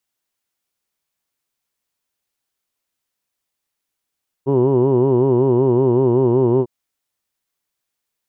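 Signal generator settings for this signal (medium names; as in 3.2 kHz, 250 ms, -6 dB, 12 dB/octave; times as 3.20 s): formant vowel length 2.20 s, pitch 131 Hz, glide -1 st, vibrato depth 1.2 st, F1 380 Hz, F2 960 Hz, F3 2.9 kHz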